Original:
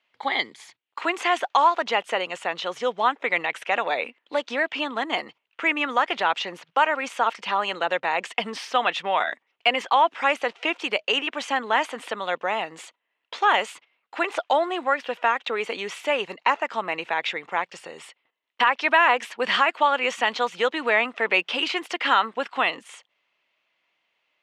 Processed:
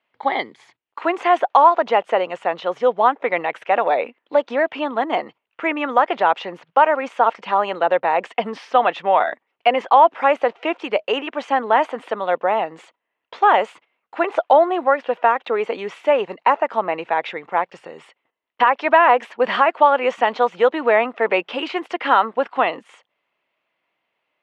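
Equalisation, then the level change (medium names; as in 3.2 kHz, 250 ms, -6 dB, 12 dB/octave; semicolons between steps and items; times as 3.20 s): low-pass 1.1 kHz 6 dB/octave; dynamic bell 640 Hz, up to +6 dB, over -35 dBFS, Q 0.84; +4.5 dB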